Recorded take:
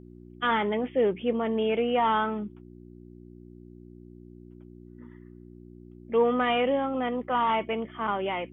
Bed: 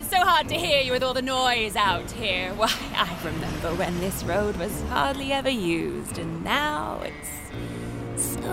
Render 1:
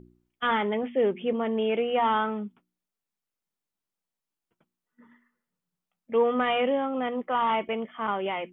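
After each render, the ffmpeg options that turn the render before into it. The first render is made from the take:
ffmpeg -i in.wav -af "bandreject=frequency=60:width_type=h:width=4,bandreject=frequency=120:width_type=h:width=4,bandreject=frequency=180:width_type=h:width=4,bandreject=frequency=240:width_type=h:width=4,bandreject=frequency=300:width_type=h:width=4,bandreject=frequency=360:width_type=h:width=4" out.wav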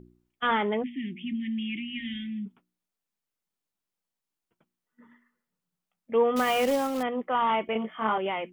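ffmpeg -i in.wav -filter_complex "[0:a]asplit=3[link_01][link_02][link_03];[link_01]afade=type=out:start_time=0.82:duration=0.02[link_04];[link_02]asuperstop=centerf=780:order=20:qfactor=0.51,afade=type=in:start_time=0.82:duration=0.02,afade=type=out:start_time=2.45:duration=0.02[link_05];[link_03]afade=type=in:start_time=2.45:duration=0.02[link_06];[link_04][link_05][link_06]amix=inputs=3:normalize=0,asettb=1/sr,asplit=3[link_07][link_08][link_09];[link_07]atrim=end=6.364[link_10];[link_08]atrim=start=6.36:end=7.03,asetpts=PTS-STARTPTS,afade=type=in:duration=0.004:curve=qsin,afade=type=out:start_time=0.666:duration=0.004:curve=qsin,acrusher=bits=3:mode=log:mix=0:aa=0.000001[link_11];[link_09]atrim=start=7.026[link_12];[link_10][link_11]acrossfade=duration=0.004:curve1=hsin:curve2=qsin[link_13];[link_13][link_12]acrossfade=duration=0.004:curve1=qsin:curve2=hsin,asettb=1/sr,asplit=3[link_14][link_15][link_16];[link_14]atrim=end=7.734[link_17];[link_15]atrim=start=7.73:end=8.18,asetpts=PTS-STARTPTS,afade=type=in:duration=0.004:curve=qsin,afade=type=out:start_time=0.446:duration=0.004:curve=qsin,asplit=2[link_18][link_19];[link_19]adelay=23,volume=-2dB[link_20];[link_18][link_20]amix=inputs=2:normalize=0,atrim=end_sample=19845[link_21];[link_16]atrim=start=8.176[link_22];[link_17][link_21]acrossfade=duration=0.004:curve1=hsin:curve2=qsin[link_23];[link_23][link_22]acrossfade=duration=0.004:curve1=qsin:curve2=hsin" out.wav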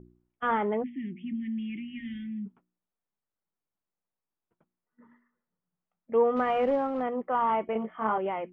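ffmpeg -i in.wav -af "lowpass=1400,equalizer=frequency=250:width_type=o:width=0.77:gain=-2" out.wav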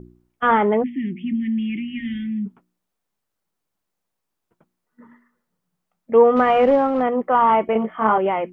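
ffmpeg -i in.wav -af "volume=10.5dB" out.wav

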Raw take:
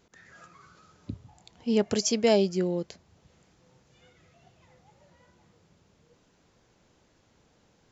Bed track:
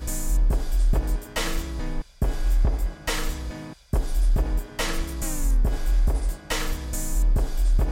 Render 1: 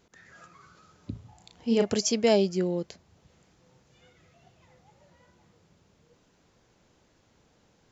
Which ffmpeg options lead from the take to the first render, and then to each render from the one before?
ffmpeg -i in.wav -filter_complex "[0:a]asettb=1/sr,asplit=3[link_01][link_02][link_03];[link_01]atrim=end=1.114[link_04];[link_02]atrim=start=1.11:end=1.9,asetpts=PTS-STARTPTS,afade=type=in:duration=0.004:curve=qsin,afade=type=out:start_time=0.786:duration=0.004:curve=qsin,asplit=2[link_05][link_06];[link_06]adelay=35,volume=-5dB[link_07];[link_05][link_07]amix=inputs=2:normalize=0,atrim=end_sample=34839[link_08];[link_03]atrim=start=1.896[link_09];[link_04][link_08]acrossfade=duration=0.004:curve1=hsin:curve2=qsin[link_10];[link_10][link_09]acrossfade=duration=0.004:curve1=qsin:curve2=hsin" out.wav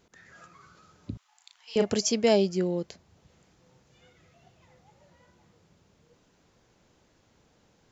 ffmpeg -i in.wav -filter_complex "[0:a]asettb=1/sr,asplit=3[link_01][link_02][link_03];[link_01]atrim=end=1.174[link_04];[link_02]atrim=start=1.17:end=1.76,asetpts=PTS-STARTPTS,afade=type=in:duration=0.004:curve=qsin,afade=type=out:start_time=0.586:duration=0.004:curve=qsin,highpass=frequency=1100:width=0.5412,highpass=frequency=1100:width=1.3066[link_05];[link_03]atrim=start=1.756[link_06];[link_04][link_05]acrossfade=duration=0.004:curve1=hsin:curve2=qsin[link_07];[link_07][link_06]acrossfade=duration=0.004:curve1=qsin:curve2=hsin" out.wav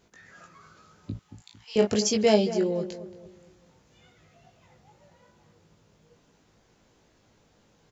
ffmpeg -i in.wav -filter_complex "[0:a]asplit=2[link_01][link_02];[link_02]adelay=19,volume=-4dB[link_03];[link_01][link_03]amix=inputs=2:normalize=0,asplit=2[link_04][link_05];[link_05]adelay=226,lowpass=frequency=1400:poles=1,volume=-12dB,asplit=2[link_06][link_07];[link_07]adelay=226,lowpass=frequency=1400:poles=1,volume=0.41,asplit=2[link_08][link_09];[link_09]adelay=226,lowpass=frequency=1400:poles=1,volume=0.41,asplit=2[link_10][link_11];[link_11]adelay=226,lowpass=frequency=1400:poles=1,volume=0.41[link_12];[link_04][link_06][link_08][link_10][link_12]amix=inputs=5:normalize=0" out.wav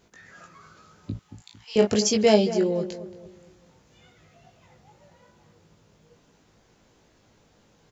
ffmpeg -i in.wav -af "volume=2.5dB" out.wav

